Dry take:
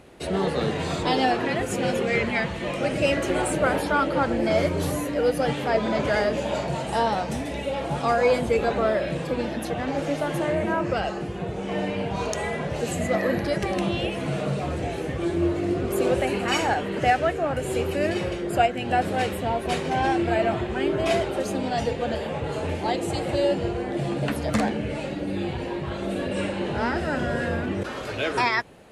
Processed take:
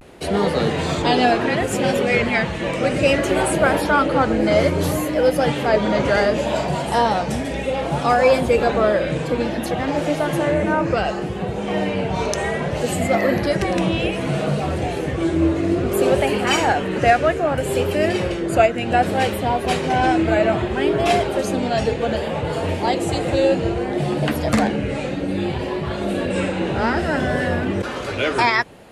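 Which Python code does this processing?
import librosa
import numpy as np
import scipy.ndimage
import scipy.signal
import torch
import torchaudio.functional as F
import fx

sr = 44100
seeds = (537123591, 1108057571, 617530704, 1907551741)

y = fx.vibrato(x, sr, rate_hz=0.63, depth_cents=82.0)
y = F.gain(torch.from_numpy(y), 5.5).numpy()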